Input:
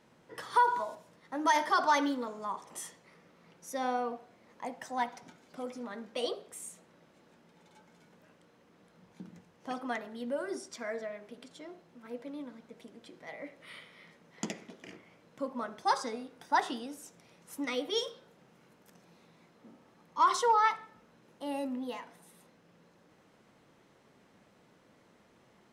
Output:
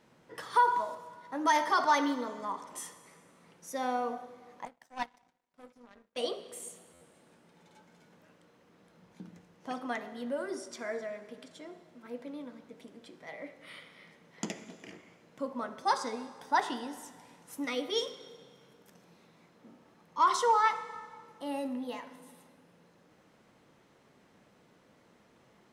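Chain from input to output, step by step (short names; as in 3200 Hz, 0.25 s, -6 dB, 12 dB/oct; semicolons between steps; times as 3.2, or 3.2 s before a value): plate-style reverb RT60 1.9 s, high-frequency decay 0.9×, DRR 12 dB; 4.65–6.17 power-law curve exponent 2; stuck buffer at 6.93, samples 512, times 6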